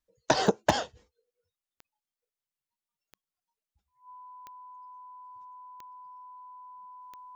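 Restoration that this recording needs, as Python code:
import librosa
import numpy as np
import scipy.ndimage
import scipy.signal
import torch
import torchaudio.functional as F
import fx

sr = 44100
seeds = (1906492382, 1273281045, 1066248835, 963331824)

y = fx.fix_declick_ar(x, sr, threshold=10.0)
y = fx.notch(y, sr, hz=1000.0, q=30.0)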